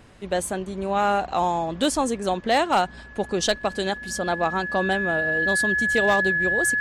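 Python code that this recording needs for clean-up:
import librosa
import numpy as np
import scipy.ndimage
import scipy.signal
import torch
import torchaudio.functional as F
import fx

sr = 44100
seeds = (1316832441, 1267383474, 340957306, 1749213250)

y = fx.fix_declip(x, sr, threshold_db=-12.5)
y = fx.notch(y, sr, hz=1700.0, q=30.0)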